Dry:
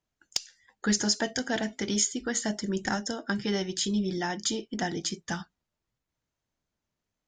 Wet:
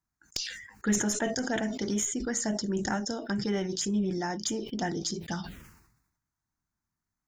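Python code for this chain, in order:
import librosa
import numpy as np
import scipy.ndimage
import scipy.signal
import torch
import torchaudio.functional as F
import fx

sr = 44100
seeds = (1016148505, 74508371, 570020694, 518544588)

y = fx.diode_clip(x, sr, knee_db=-10.5)
y = fx.env_phaser(y, sr, low_hz=520.0, high_hz=4700.0, full_db=-25.5)
y = fx.sustainer(y, sr, db_per_s=63.0)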